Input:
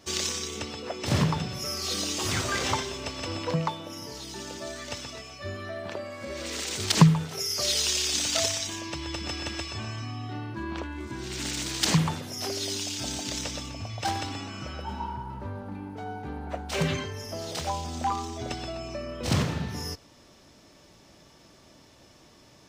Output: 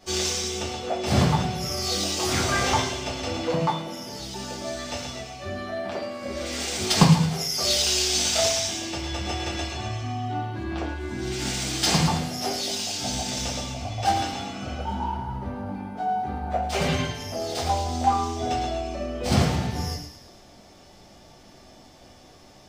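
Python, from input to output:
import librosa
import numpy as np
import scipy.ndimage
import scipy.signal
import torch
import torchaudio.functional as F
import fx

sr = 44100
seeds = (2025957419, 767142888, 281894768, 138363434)

y = fx.peak_eq(x, sr, hz=730.0, db=9.0, octaves=0.33)
y = fx.echo_wet_highpass(y, sr, ms=109, feedback_pct=49, hz=1900.0, wet_db=-7)
y = fx.room_shoebox(y, sr, seeds[0], volume_m3=33.0, walls='mixed', distance_m=0.93)
y = F.gain(torch.from_numpy(y), -3.0).numpy()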